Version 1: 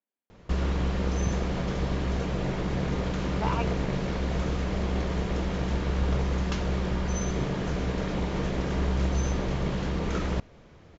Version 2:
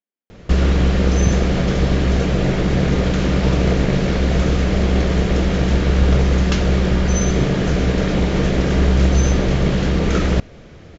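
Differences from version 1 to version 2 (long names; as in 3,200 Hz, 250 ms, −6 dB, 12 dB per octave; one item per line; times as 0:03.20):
background +12.0 dB
master: add parametric band 970 Hz −7 dB 0.58 octaves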